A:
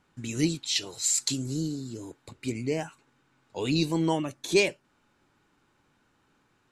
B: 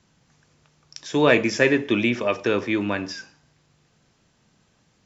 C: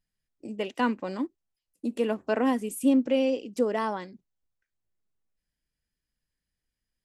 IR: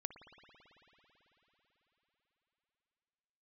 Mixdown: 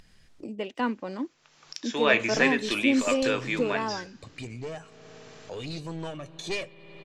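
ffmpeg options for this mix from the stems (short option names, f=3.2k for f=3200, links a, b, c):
-filter_complex "[0:a]aecho=1:1:1.7:0.48,aeval=exprs='clip(val(0),-1,0.0398)':c=same,adelay=1950,volume=-9dB,asplit=2[a][b];[b]volume=-6.5dB[c];[1:a]highpass=f=1.1k:p=1,adelay=800,volume=-0.5dB[d];[2:a]volume=-2dB[e];[3:a]atrim=start_sample=2205[f];[c][f]afir=irnorm=-1:irlink=0[g];[a][d][e][g]amix=inputs=4:normalize=0,lowpass=6.5k,acompressor=mode=upward:threshold=-33dB:ratio=2.5"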